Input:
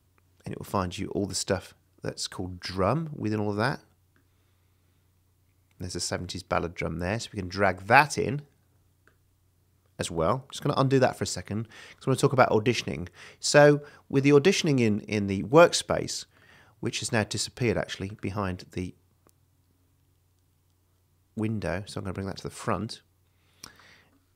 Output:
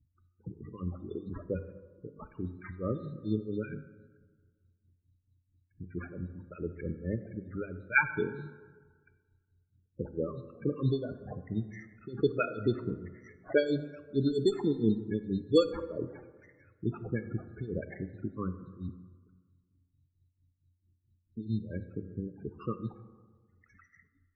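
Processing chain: resonances exaggerated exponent 2; hum notches 50/100/150/200/250 Hz; tremolo 4.5 Hz, depth 90%; static phaser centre 1.8 kHz, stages 4; Chebyshev shaper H 3 -25 dB, 4 -35 dB, 5 -41 dB, 6 -29 dB, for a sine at -13 dBFS; sample-rate reducer 3.9 kHz, jitter 0%; loudest bins only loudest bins 16; plate-style reverb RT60 1.5 s, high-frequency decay 0.4×, DRR 10.5 dB; trim +2 dB

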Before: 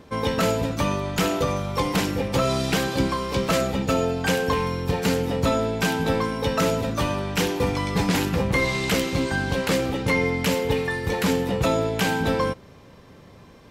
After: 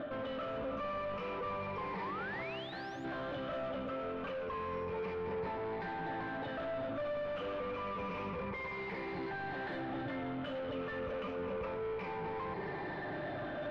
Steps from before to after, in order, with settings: drifting ripple filter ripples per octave 0.84, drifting -0.29 Hz, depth 18 dB; treble shelf 2.6 kHz -10.5 dB; reverse; compression, threshold -34 dBFS, peak gain reduction 19.5 dB; reverse; peak limiter -35.5 dBFS, peak gain reduction 11 dB; feedback comb 600 Hz, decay 0.15 s, harmonics all, mix 80%; painted sound rise, 1.98–3.05 s, 880–7400 Hz -60 dBFS; overdrive pedal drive 30 dB, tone 2.7 kHz, clips at -38.5 dBFS; distance through air 350 m; on a send: reverberation RT60 4.3 s, pre-delay 40 ms, DRR 13.5 dB; on the sum: trim +8 dB

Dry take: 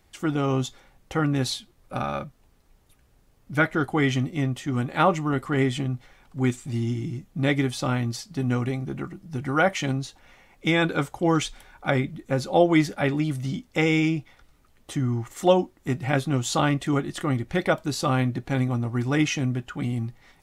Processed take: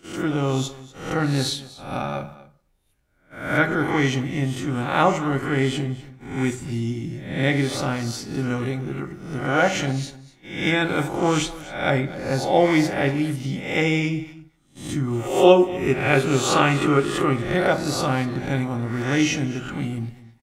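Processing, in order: reverse spectral sustain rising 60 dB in 0.64 s; 15.07–17.36 s: graphic EQ with 31 bands 400 Hz +10 dB, 1.25 kHz +9 dB, 2.5 kHz +11 dB; gate -42 dBFS, range -12 dB; peaking EQ 1.2 kHz -4 dB 0.24 oct; delay 243 ms -18 dB; reverberation RT60 0.45 s, pre-delay 12 ms, DRR 8 dB

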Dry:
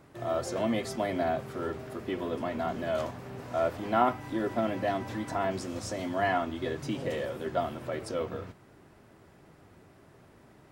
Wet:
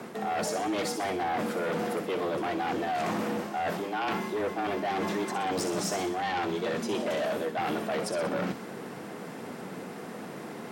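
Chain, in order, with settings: reverse; compression 20:1, threshold -39 dBFS, peak gain reduction 21 dB; reverse; sine folder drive 9 dB, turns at -29.5 dBFS; feedback echo behind a high-pass 62 ms, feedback 54%, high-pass 4.3 kHz, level -6 dB; frequency shift +88 Hz; trim +3.5 dB

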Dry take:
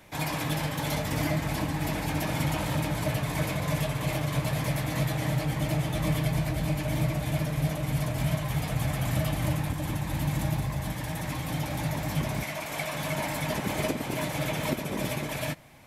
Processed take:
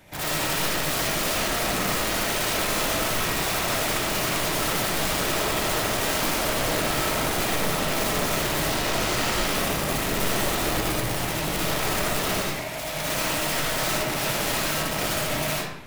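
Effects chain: 8.69–9.47 s: CVSD coder 32 kbps; bass shelf 160 Hz +2 dB; band-stop 1.1 kHz, Q 12; integer overflow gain 26 dB; 12.40–12.97 s: feedback comb 57 Hz, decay 0.26 s, harmonics all, mix 60%; reverberation RT60 0.85 s, pre-delay 35 ms, DRR -5.5 dB

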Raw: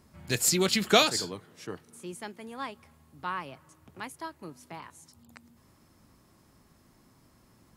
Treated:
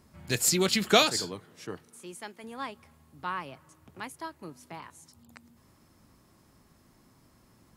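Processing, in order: 1.88–2.44 s: bass shelf 330 Hz -8 dB

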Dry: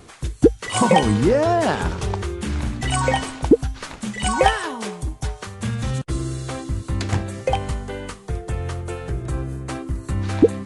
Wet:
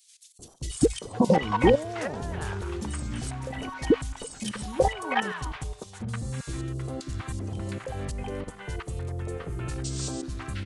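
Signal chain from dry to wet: painted sound noise, 9.84–10.22 s, 1.3–8.8 kHz -30 dBFS; level held to a coarse grid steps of 16 dB; three bands offset in time highs, lows, mids 390/710 ms, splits 810/3500 Hz

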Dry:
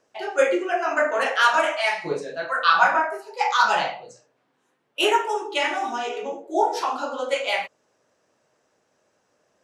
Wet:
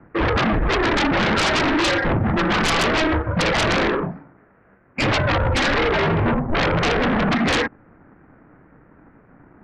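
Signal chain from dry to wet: comb filter that takes the minimum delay 0.38 ms; mistuned SSB -320 Hz 350–2000 Hz; compression 4:1, threshold -29 dBFS, peak gain reduction 12 dB; sine folder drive 18 dB, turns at -15.5 dBFS; 4.02–5.02 s: bass shelf 78 Hz -10.5 dB

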